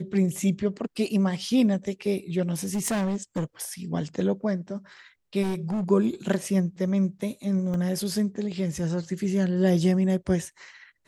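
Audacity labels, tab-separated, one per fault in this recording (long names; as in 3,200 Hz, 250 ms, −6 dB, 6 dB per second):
2.500000	3.440000	clipping −23 dBFS
5.420000	5.910000	clipping −24.5 dBFS
7.740000	7.740000	drop-out 2 ms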